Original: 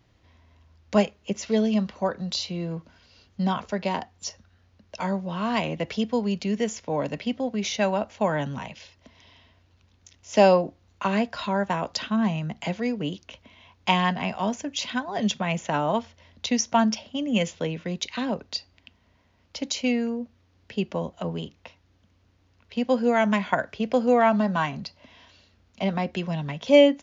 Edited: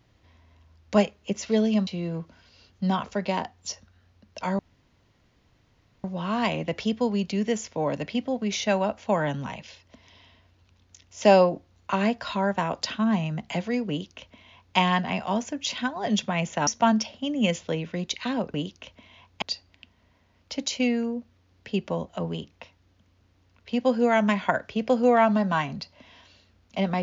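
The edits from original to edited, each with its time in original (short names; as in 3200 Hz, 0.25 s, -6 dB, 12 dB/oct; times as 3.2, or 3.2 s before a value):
1.87–2.44 cut
5.16 insert room tone 1.45 s
13.01–13.89 copy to 18.46
15.79–16.59 cut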